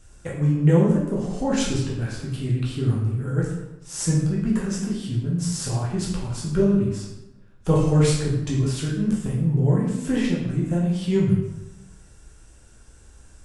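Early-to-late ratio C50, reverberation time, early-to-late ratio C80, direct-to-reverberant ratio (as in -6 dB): 2.5 dB, 0.95 s, 5.5 dB, -5.0 dB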